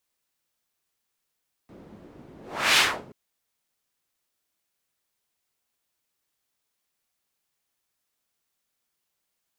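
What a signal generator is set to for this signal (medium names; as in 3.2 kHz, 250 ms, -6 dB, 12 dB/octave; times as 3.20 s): whoosh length 1.43 s, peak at 1.08 s, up 0.40 s, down 0.34 s, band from 270 Hz, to 3 kHz, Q 1.1, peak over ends 29.5 dB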